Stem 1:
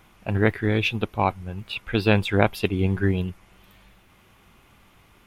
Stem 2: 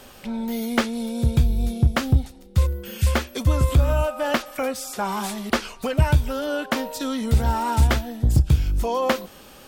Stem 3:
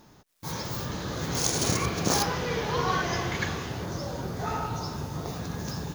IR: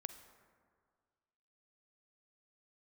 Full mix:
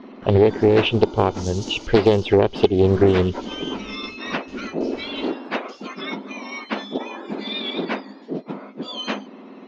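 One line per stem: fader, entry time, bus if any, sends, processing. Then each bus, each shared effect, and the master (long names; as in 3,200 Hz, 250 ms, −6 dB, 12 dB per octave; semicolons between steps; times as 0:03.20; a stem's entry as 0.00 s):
+0.5 dB, 0.00 s, bus A, no send, hollow resonant body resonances 410/3,000 Hz, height 18 dB, ringing for 20 ms
+1.5 dB, 0.00 s, no bus, no send, frequency axis turned over on the octave scale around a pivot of 1,800 Hz; low-pass filter 3,600 Hz 24 dB per octave
−3.5 dB, 0.00 s, bus A, no send, inverse Chebyshev high-pass filter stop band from 1,600 Hz, stop band 40 dB; string-ensemble chorus
bus A: 0.0 dB, noise gate with hold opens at −37 dBFS; downward compressor 5 to 1, threshold −14 dBFS, peak gain reduction 11.5 dB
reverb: not used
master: low-pass filter 6,300 Hz 24 dB per octave; low-shelf EQ 190 Hz +8.5 dB; highs frequency-modulated by the lows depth 0.37 ms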